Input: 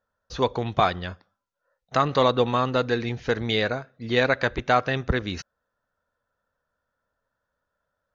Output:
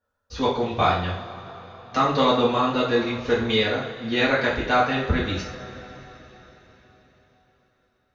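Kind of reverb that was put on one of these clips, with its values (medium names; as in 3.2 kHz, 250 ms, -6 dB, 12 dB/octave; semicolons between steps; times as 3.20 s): two-slope reverb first 0.46 s, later 4.5 s, from -20 dB, DRR -8.5 dB; trim -6.5 dB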